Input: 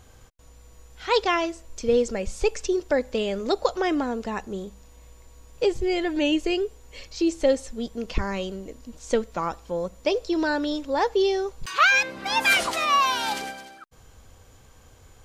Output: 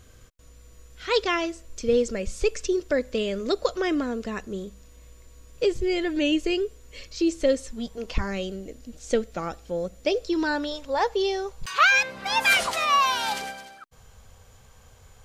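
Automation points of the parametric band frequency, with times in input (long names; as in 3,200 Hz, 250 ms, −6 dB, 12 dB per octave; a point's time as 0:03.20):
parametric band −14 dB 0.35 octaves
0:07.65 840 Hz
0:08.08 150 Hz
0:08.29 1,000 Hz
0:10.19 1,000 Hz
0:10.71 310 Hz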